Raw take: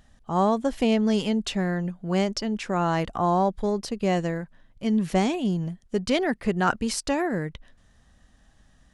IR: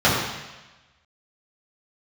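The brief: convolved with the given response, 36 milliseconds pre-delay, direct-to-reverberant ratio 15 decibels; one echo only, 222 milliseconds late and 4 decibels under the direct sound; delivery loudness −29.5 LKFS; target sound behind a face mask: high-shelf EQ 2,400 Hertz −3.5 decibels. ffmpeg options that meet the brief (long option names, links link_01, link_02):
-filter_complex "[0:a]aecho=1:1:222:0.631,asplit=2[link_01][link_02];[1:a]atrim=start_sample=2205,adelay=36[link_03];[link_02][link_03]afir=irnorm=-1:irlink=0,volume=-37.5dB[link_04];[link_01][link_04]amix=inputs=2:normalize=0,highshelf=frequency=2400:gain=-3.5,volume=-5dB"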